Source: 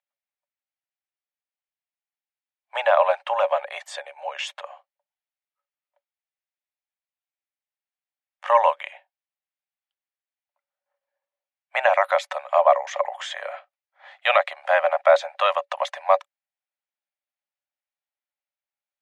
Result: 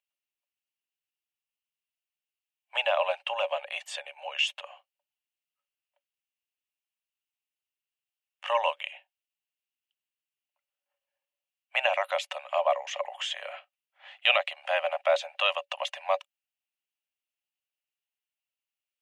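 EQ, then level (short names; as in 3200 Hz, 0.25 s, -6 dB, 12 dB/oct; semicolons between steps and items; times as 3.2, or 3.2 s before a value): bell 2800 Hz +14.5 dB 0.45 oct; high shelf 4500 Hz +7.5 dB; dynamic EQ 1500 Hz, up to -5 dB, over -30 dBFS, Q 0.82; -7.5 dB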